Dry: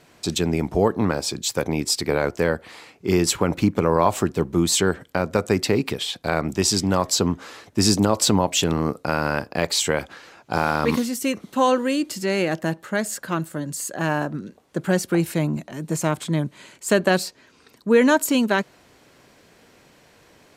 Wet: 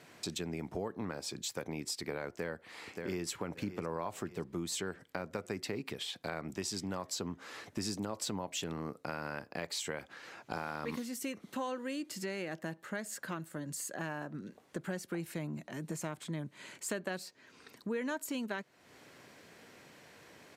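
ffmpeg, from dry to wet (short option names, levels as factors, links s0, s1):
-filter_complex "[0:a]asplit=2[s0][s1];[s1]afade=t=in:st=2.29:d=0.01,afade=t=out:st=3.27:d=0.01,aecho=0:1:580|1160|1740|2320:0.237137|0.106712|0.0480203|0.0216091[s2];[s0][s2]amix=inputs=2:normalize=0,highpass=94,equalizer=f=1900:w=1.9:g=3.5,acompressor=threshold=0.0158:ratio=3,volume=0.631"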